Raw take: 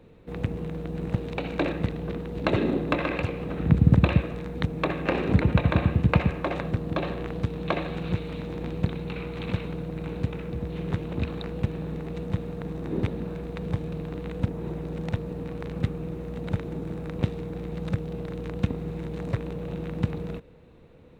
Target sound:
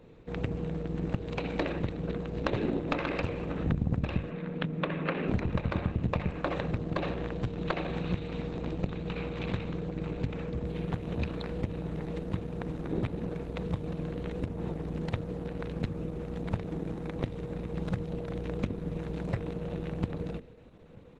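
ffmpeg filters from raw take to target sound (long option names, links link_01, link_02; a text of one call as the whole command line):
ffmpeg -i in.wav -filter_complex "[0:a]bandreject=frequency=50:width_type=h:width=6,bandreject=frequency=100:width_type=h:width=6,bandreject=frequency=150:width_type=h:width=6,bandreject=frequency=200:width_type=h:width=6,bandreject=frequency=250:width_type=h:width=6,bandreject=frequency=300:width_type=h:width=6,bandreject=frequency=350:width_type=h:width=6,bandreject=frequency=400:width_type=h:width=6,asplit=2[link_01][link_02];[link_02]adelay=932.9,volume=-26dB,highshelf=frequency=4000:gain=-21[link_03];[link_01][link_03]amix=inputs=2:normalize=0,aeval=exprs='0.501*(cos(1*acos(clip(val(0)/0.501,-1,1)))-cos(1*PI/2))+0.0794*(cos(4*acos(clip(val(0)/0.501,-1,1)))-cos(4*PI/2))':channel_layout=same,acompressor=threshold=-25dB:ratio=4,asplit=3[link_04][link_05][link_06];[link_04]afade=type=out:start_time=4.29:duration=0.02[link_07];[link_05]highpass=frequency=160:width=0.5412,highpass=frequency=160:width=1.3066,equalizer=frequency=160:width_type=q:width=4:gain=6,equalizer=frequency=370:width_type=q:width=4:gain=-4,equalizer=frequency=770:width_type=q:width=4:gain=-7,lowpass=frequency=3400:width=0.5412,lowpass=frequency=3400:width=1.3066,afade=type=in:start_time=4.29:duration=0.02,afade=type=out:start_time=5.27:duration=0.02[link_08];[link_06]afade=type=in:start_time=5.27:duration=0.02[link_09];[link_07][link_08][link_09]amix=inputs=3:normalize=0" -ar 48000 -c:a libopus -b:a 12k out.opus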